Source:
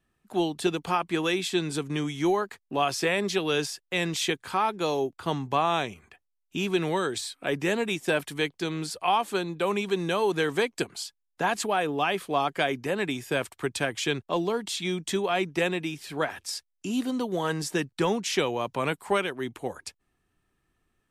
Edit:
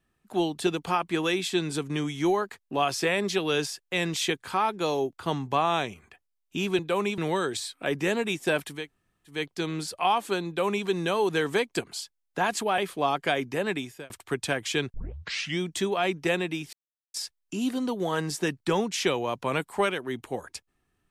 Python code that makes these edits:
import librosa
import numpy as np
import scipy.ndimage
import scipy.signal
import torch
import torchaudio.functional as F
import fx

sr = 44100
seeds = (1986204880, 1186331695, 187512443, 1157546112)

y = fx.edit(x, sr, fx.insert_room_tone(at_s=8.39, length_s=0.58, crossfade_s=0.24),
    fx.duplicate(start_s=9.5, length_s=0.39, to_s=6.79),
    fx.cut(start_s=11.81, length_s=0.29),
    fx.fade_out_span(start_s=13.03, length_s=0.39),
    fx.tape_start(start_s=14.26, length_s=0.66),
    fx.silence(start_s=16.05, length_s=0.41), tone=tone)